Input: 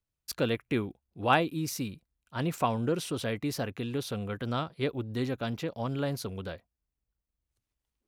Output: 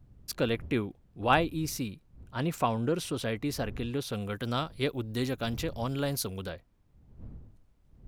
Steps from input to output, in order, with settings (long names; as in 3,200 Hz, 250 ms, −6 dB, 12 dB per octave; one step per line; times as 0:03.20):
wind on the microphone 96 Hz −48 dBFS
0:04.13–0:06.49: high-shelf EQ 4,600 Hz +11.5 dB
background noise brown −66 dBFS